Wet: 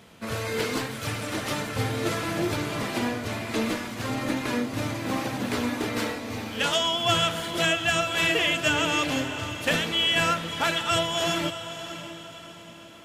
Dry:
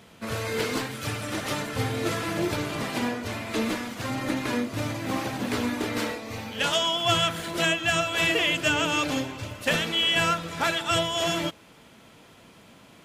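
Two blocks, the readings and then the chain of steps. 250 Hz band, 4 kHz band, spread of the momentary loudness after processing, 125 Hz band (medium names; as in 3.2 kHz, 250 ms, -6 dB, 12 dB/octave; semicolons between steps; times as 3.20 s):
+0.5 dB, +0.5 dB, 12 LU, +0.5 dB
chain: echo that smears into a reverb 583 ms, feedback 44%, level -11 dB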